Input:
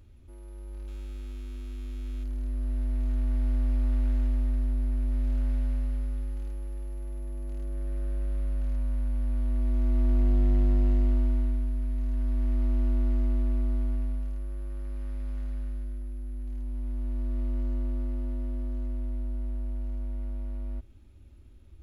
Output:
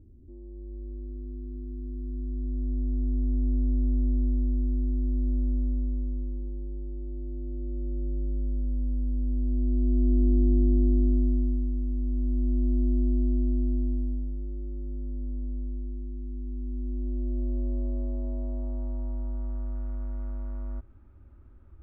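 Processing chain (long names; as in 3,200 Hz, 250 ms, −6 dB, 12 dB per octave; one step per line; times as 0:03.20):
low-pass filter sweep 320 Hz → 1,300 Hz, 0:16.79–0:19.85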